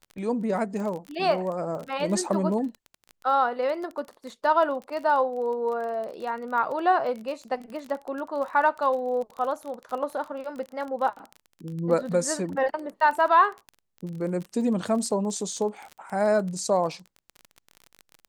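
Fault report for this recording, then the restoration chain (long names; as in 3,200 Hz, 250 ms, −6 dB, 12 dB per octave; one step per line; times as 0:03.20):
surface crackle 28 per second −32 dBFS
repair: click removal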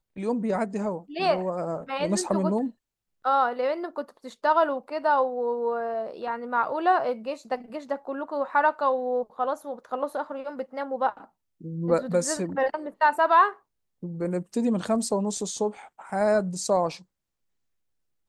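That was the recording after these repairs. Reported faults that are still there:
none of them is left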